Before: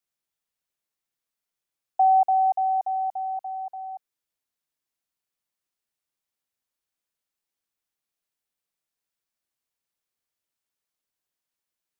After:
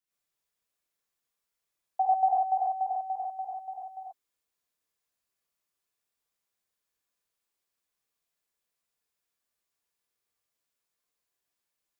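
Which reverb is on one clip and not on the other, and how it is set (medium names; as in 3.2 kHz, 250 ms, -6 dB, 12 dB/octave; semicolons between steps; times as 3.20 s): gated-style reverb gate 160 ms rising, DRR -7 dB; trim -5.5 dB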